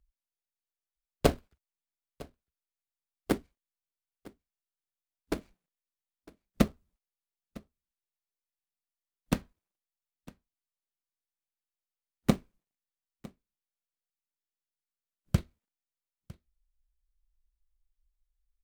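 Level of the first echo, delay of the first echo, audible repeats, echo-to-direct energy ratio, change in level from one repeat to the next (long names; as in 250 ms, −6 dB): −21.5 dB, 955 ms, 1, −21.5 dB, repeats not evenly spaced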